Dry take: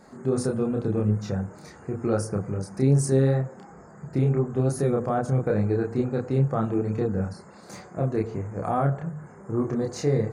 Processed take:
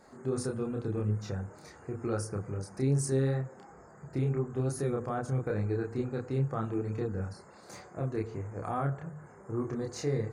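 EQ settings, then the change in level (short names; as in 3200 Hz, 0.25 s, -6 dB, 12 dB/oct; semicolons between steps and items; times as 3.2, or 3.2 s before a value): dynamic EQ 620 Hz, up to -6 dB, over -38 dBFS, Q 1.6; bell 190 Hz -7 dB 0.84 oct; -4.5 dB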